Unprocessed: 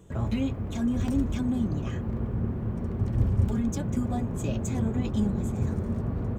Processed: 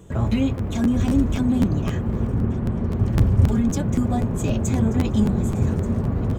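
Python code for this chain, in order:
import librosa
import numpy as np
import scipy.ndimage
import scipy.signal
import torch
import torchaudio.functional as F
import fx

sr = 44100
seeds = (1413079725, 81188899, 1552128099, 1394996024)

y = fx.lowpass(x, sr, hz=fx.line((2.45, 4000.0), (2.95, 6400.0)), slope=12, at=(2.45, 2.95), fade=0.02)
y = y + 10.0 ** (-18.0 / 20.0) * np.pad(y, (int(1182 * sr / 1000.0), 0))[:len(y)]
y = fx.buffer_crackle(y, sr, first_s=0.57, period_s=0.26, block=512, kind='repeat')
y = y * 10.0 ** (7.0 / 20.0)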